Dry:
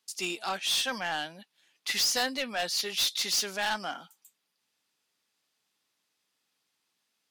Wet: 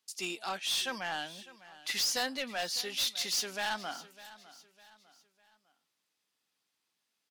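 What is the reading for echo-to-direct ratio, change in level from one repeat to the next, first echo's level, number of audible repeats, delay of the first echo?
-17.5 dB, -8.0 dB, -18.0 dB, 3, 603 ms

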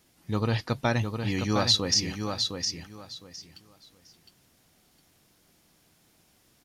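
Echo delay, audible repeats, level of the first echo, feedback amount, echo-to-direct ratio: 710 ms, 3, -6.0 dB, 21%, -6.0 dB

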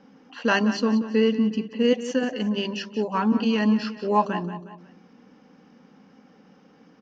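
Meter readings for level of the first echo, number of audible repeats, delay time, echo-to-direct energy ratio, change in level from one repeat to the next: -12.5 dB, 3, 181 ms, -11.5 dB, -7.0 dB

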